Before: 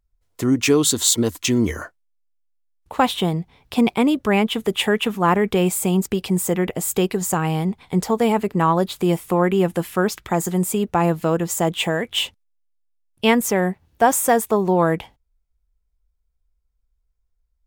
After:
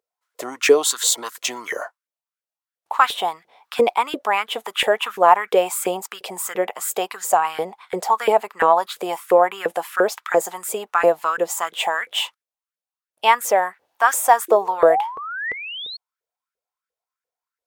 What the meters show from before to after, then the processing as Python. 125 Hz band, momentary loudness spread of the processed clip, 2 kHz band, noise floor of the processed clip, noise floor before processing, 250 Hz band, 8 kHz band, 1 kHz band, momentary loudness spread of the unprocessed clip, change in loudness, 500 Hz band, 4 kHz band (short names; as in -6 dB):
-24.0 dB, 13 LU, +3.0 dB, under -85 dBFS, -70 dBFS, -14.0 dB, -1.5 dB, +4.5 dB, 7 LU, 0.0 dB, +1.5 dB, -0.5 dB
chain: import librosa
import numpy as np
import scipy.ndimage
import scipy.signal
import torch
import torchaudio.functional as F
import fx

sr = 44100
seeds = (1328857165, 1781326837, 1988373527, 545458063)

y = fx.spec_paint(x, sr, seeds[0], shape='rise', start_s=14.48, length_s=1.49, low_hz=330.0, high_hz=4400.0, level_db=-31.0)
y = fx.filter_lfo_highpass(y, sr, shape='saw_up', hz=2.9, low_hz=450.0, high_hz=1700.0, q=5.1)
y = y * librosa.db_to_amplitude(-1.5)